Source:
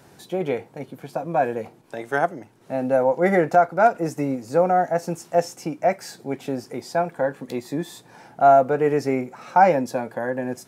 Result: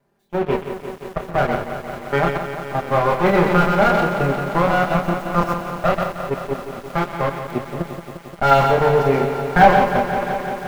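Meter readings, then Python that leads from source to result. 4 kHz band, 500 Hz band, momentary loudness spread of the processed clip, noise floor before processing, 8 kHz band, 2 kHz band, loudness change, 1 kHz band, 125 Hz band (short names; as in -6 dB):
+10.0 dB, +1.5 dB, 14 LU, -52 dBFS, -1.5 dB, +7.0 dB, +3.0 dB, +3.5 dB, +9.5 dB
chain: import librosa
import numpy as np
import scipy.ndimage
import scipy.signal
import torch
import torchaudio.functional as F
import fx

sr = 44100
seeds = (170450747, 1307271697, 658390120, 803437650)

p1 = fx.lower_of_two(x, sr, delay_ms=5.0)
p2 = fx.cheby_harmonics(p1, sr, harmonics=(3, 7), levels_db=(-24, -24), full_scale_db=-2.5)
p3 = fx.high_shelf(p2, sr, hz=4700.0, db=3.5)
p4 = fx.doubler(p3, sr, ms=29.0, db=-4.5)
p5 = p4 + 10.0 ** (-8.0 / 20.0) * np.pad(p4, (int(125 * sr / 1000.0), 0))[:len(p4)]
p6 = fx.level_steps(p5, sr, step_db=16)
p7 = p5 + (p6 * 10.0 ** (2.5 / 20.0))
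p8 = fx.leveller(p7, sr, passes=3)
p9 = fx.peak_eq(p8, sr, hz=8000.0, db=-14.0, octaves=2.6)
p10 = fx.echo_crushed(p9, sr, ms=175, feedback_pct=80, bits=6, wet_db=-9.0)
y = p10 * 10.0 ** (-5.5 / 20.0)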